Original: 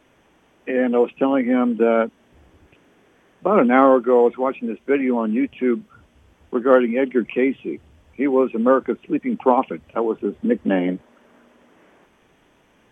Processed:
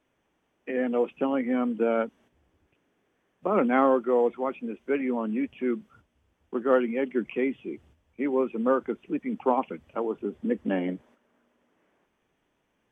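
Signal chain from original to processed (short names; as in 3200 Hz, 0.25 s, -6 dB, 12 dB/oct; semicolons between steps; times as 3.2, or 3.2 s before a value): gate -47 dBFS, range -8 dB; gain -8 dB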